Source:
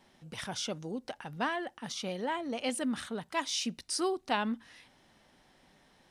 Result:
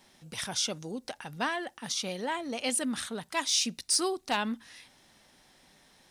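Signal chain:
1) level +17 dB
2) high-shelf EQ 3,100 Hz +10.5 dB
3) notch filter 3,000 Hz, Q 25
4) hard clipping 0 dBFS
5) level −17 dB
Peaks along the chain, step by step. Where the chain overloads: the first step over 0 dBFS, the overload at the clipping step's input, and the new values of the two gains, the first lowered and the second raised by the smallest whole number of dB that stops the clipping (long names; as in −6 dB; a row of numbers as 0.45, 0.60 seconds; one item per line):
+2.5, +5.0, +5.0, 0.0, −17.0 dBFS
step 1, 5.0 dB
step 1 +12 dB, step 5 −12 dB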